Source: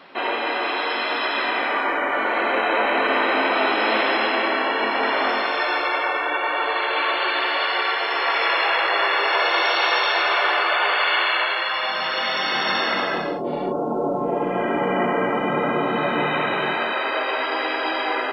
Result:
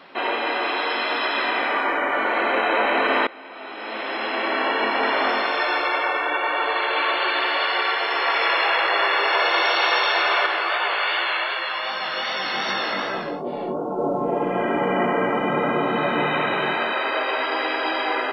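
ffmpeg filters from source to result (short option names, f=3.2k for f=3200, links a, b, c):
-filter_complex "[0:a]asettb=1/sr,asplit=3[a][b][c];[a]atrim=end=10.464[d];[b]atrim=start=10.46:end=13.99,asetpts=PTS-STARTPTS,afade=t=in:d=0.004:c=qsin,afade=t=out:st=3.526:d=0.004:c=qsin,flanger=delay=15:depth=5.8:speed=2.6[e];[c]atrim=start=13.986[f];[d][e]acrossfade=d=0.004:c1=hsin:c2=qsin[g];[g][f]acrossfade=d=0.004:c1=qsin:c2=hsin,asplit=2[h][i];[h]atrim=end=3.27,asetpts=PTS-STARTPTS,afade=t=out:st=3.266:d=0.004:c=hsin:silence=0.0841395[j];[i]atrim=start=3.27,asetpts=PTS-STARTPTS,afade=t=in:d=1.39:c=qua:silence=0.0841395[k];[j][k]concat=n=2:v=0:a=1"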